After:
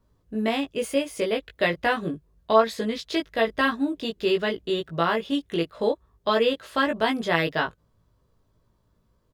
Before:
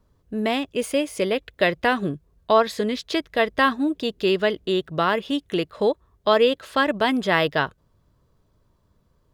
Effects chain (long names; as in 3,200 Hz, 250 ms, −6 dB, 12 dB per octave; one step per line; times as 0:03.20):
double-tracking delay 18 ms −2.5 dB
level −4.5 dB